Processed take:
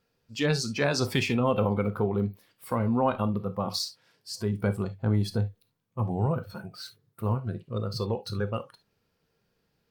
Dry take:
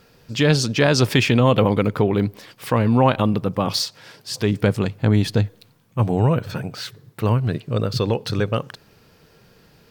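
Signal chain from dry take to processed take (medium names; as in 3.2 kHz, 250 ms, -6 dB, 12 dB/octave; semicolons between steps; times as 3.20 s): gated-style reverb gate 90 ms flat, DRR 9.5 dB; spectral noise reduction 13 dB; trim -8.5 dB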